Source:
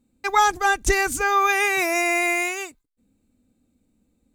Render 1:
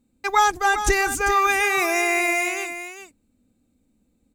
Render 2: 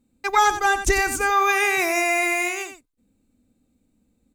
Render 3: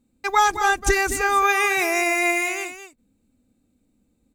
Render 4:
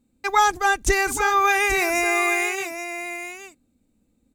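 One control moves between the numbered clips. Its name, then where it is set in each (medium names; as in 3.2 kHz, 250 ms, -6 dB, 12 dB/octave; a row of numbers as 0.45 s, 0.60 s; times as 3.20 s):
delay, time: 396 ms, 91 ms, 216 ms, 829 ms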